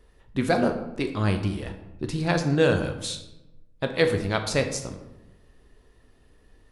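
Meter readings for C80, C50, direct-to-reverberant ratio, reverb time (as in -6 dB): 11.0 dB, 8.5 dB, 5.5 dB, 0.95 s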